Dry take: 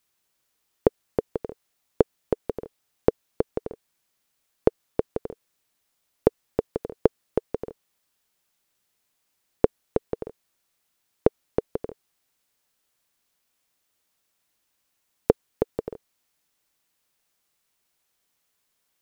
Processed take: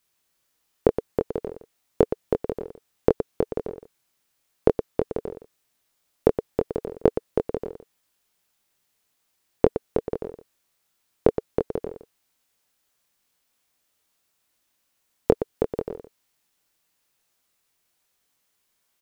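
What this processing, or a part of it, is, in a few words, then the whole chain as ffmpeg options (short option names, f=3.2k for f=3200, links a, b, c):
slapback doubling: -filter_complex "[0:a]asplit=3[a][b][c];[b]adelay=23,volume=-4.5dB[d];[c]adelay=118,volume=-9dB[e];[a][d][e]amix=inputs=3:normalize=0"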